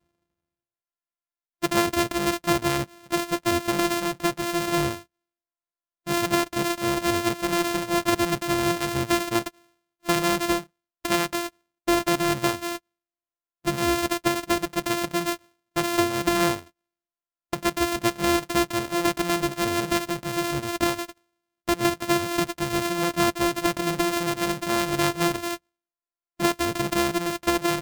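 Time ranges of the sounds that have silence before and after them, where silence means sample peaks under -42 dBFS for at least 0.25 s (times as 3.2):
1.62–5.03
6.07–9.49
10.05–10.64
11.05–11.49
11.87–12.78
13.65–15.37
15.76–16.67
17.53–21.12
21.68–25.57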